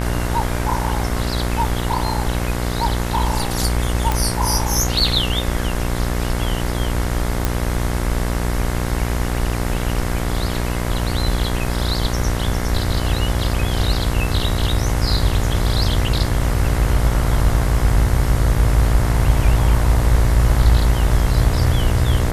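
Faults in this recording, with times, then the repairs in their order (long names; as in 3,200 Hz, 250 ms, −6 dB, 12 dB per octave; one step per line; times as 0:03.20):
mains buzz 60 Hz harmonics 37 −22 dBFS
0:04.12: click
0:07.45: click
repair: click removal
hum removal 60 Hz, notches 37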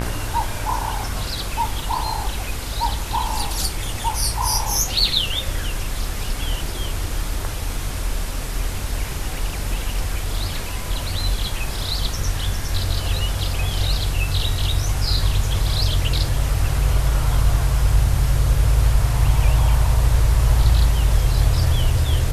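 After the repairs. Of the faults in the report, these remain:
none of them is left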